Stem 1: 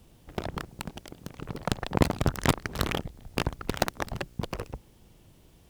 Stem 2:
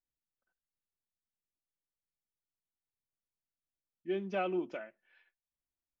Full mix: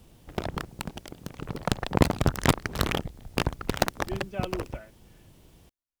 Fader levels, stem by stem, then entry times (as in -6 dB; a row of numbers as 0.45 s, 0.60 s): +2.0 dB, -3.0 dB; 0.00 s, 0.00 s